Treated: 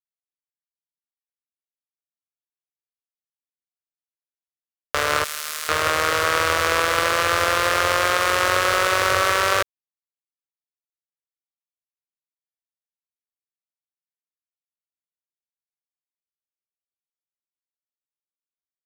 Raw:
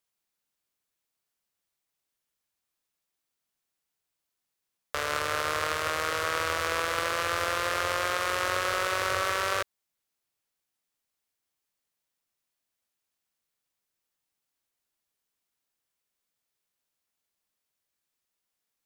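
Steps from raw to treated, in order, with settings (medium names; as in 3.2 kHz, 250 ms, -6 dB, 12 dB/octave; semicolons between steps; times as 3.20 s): 5.24–5.69 s: differentiator; word length cut 8-bit, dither none; trim +9 dB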